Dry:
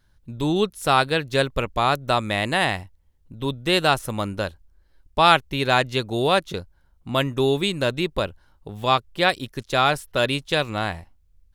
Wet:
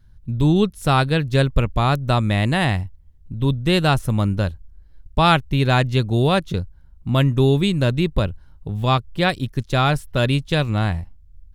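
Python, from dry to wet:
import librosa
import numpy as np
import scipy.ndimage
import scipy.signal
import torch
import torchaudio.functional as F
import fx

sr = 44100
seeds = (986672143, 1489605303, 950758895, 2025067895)

y = fx.bass_treble(x, sr, bass_db=14, treble_db=-1)
y = y * librosa.db_to_amplitude(-1.0)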